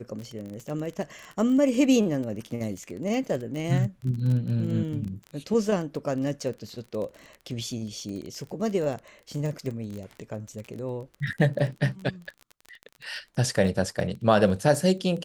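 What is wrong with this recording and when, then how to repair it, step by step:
crackle 24 per s -32 dBFS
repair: de-click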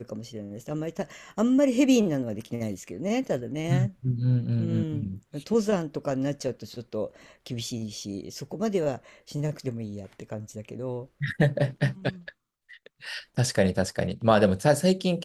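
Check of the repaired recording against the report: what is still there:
nothing left

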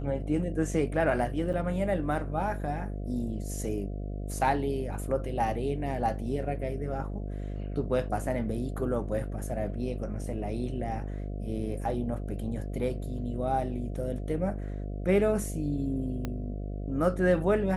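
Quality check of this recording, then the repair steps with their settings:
buzz 50 Hz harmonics 14 -35 dBFS
1.53–1.54 s: dropout 7.4 ms
16.25 s: pop -19 dBFS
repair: de-click; de-hum 50 Hz, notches 14; interpolate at 1.53 s, 7.4 ms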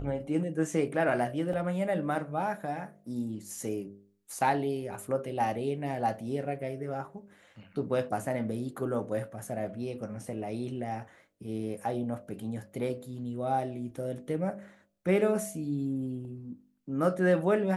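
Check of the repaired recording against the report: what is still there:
16.25 s: pop

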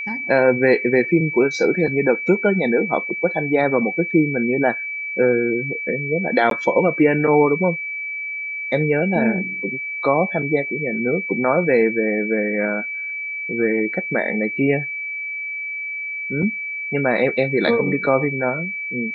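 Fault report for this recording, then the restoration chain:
whine 2.3 kHz -25 dBFS
6.50–6.51 s: dropout 12 ms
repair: band-stop 2.3 kHz, Q 30; interpolate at 6.50 s, 12 ms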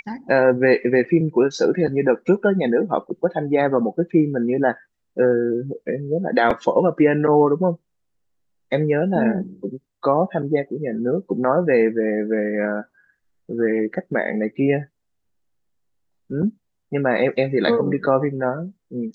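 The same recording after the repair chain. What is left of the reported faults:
nothing left

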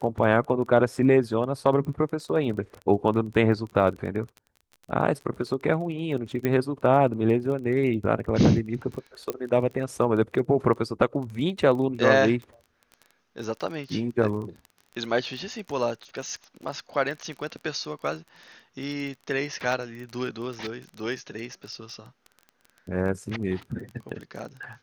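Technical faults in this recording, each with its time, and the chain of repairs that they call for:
crackle 21 per s -34 dBFS
6.45 s: pop -13 dBFS
9.30 s: pop -14 dBFS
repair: de-click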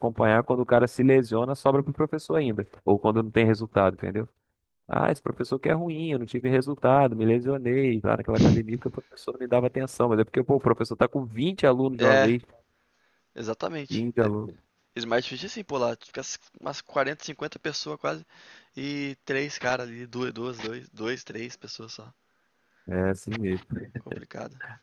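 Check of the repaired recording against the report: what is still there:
6.45 s: pop

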